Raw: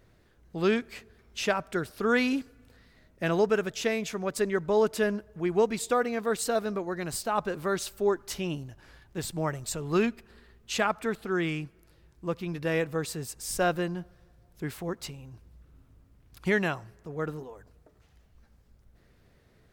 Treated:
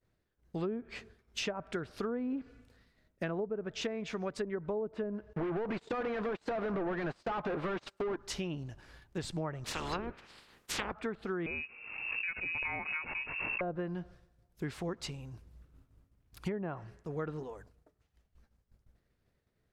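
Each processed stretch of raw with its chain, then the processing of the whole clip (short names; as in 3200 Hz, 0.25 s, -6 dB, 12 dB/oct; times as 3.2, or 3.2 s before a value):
5.33–8.16 overdrive pedal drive 36 dB, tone 1300 Hz, clips at -13 dBFS + compressor 8:1, threshold -25 dBFS + gate -29 dBFS, range -38 dB
9.64–10.92 spectral limiter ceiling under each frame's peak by 28 dB + bell 660 Hz -4.5 dB 0.23 oct
11.46–13.61 G.711 law mismatch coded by A + inverted band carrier 2700 Hz + backwards sustainer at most 47 dB/s
whole clip: expander -50 dBFS; treble ducked by the level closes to 640 Hz, closed at -21 dBFS; compressor, threshold -33 dBFS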